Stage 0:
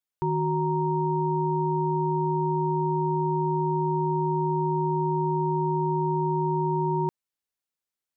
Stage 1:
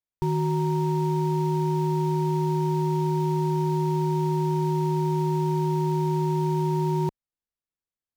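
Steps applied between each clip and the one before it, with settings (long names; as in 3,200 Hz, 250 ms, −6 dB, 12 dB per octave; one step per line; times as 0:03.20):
spectral tilt −2.5 dB per octave
in parallel at −8.5 dB: bit reduction 5 bits
on the sum: level −6 dB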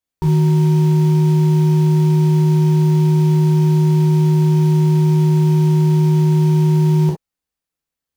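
reverb whose tail is shaped and stops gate 80 ms flat, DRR −2 dB
level +5 dB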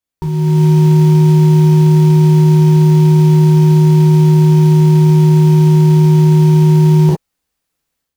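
brickwall limiter −14 dBFS, peak gain reduction 6.5 dB
automatic gain control gain up to 12.5 dB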